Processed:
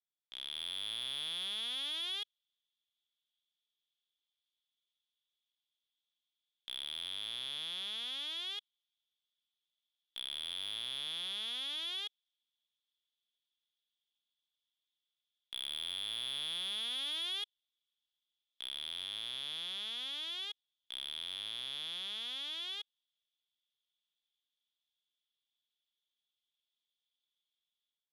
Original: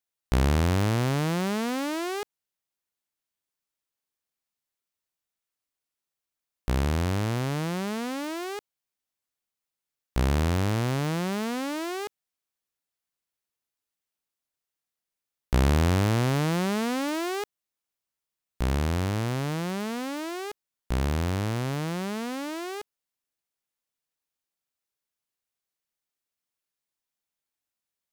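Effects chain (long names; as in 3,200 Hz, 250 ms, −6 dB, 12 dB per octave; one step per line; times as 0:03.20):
resonant band-pass 3,400 Hz, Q 15
automatic gain control gain up to 16 dB
soft clipping −32 dBFS, distortion −10 dB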